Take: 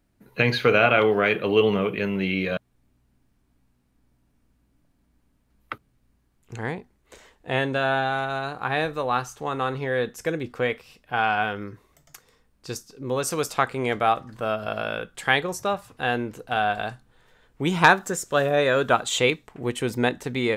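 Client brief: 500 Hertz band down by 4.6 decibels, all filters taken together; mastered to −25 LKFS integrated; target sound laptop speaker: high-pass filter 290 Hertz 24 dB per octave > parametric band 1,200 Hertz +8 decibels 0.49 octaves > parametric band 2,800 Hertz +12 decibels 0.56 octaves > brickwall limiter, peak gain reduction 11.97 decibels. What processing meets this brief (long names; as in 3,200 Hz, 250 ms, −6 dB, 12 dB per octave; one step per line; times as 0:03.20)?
high-pass filter 290 Hz 24 dB per octave
parametric band 500 Hz −6 dB
parametric band 1,200 Hz +8 dB 0.49 octaves
parametric band 2,800 Hz +12 dB 0.56 octaves
level −2 dB
brickwall limiter −10 dBFS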